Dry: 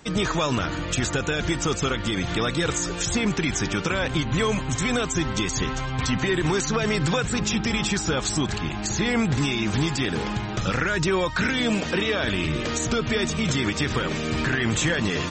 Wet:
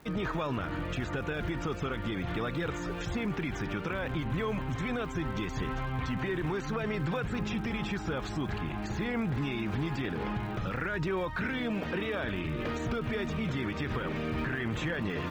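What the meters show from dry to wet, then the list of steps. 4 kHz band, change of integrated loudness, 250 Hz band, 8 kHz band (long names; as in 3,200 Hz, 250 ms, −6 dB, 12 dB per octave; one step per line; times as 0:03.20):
−15.5 dB, −9.0 dB, −8.0 dB, −24.5 dB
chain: low-pass filter 2,300 Hz 12 dB per octave
brickwall limiter −19.5 dBFS, peak gain reduction 7 dB
surface crackle 200 per second −41 dBFS
level −5 dB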